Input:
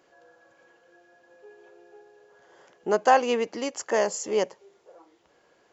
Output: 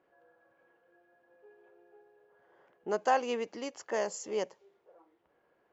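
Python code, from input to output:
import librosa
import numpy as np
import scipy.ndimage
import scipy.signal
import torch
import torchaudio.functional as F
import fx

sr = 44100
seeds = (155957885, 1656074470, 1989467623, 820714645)

y = fx.env_lowpass(x, sr, base_hz=2000.0, full_db=-23.0)
y = y * 10.0 ** (-8.5 / 20.0)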